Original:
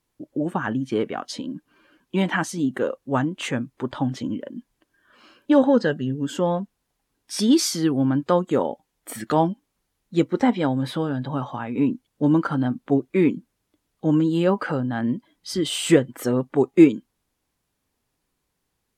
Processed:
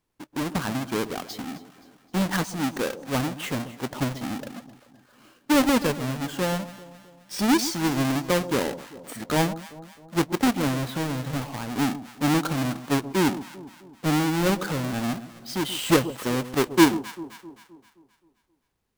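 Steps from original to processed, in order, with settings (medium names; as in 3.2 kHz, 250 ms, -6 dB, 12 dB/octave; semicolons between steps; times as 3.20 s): square wave that keeps the level; echo whose repeats swap between lows and highs 131 ms, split 920 Hz, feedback 67%, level -13 dB; trim -7 dB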